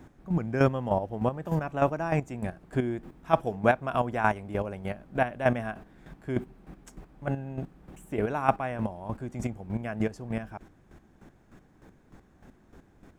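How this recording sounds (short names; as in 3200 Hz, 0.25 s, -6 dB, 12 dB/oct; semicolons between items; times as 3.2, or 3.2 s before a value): chopped level 3.3 Hz, depth 65%, duty 25%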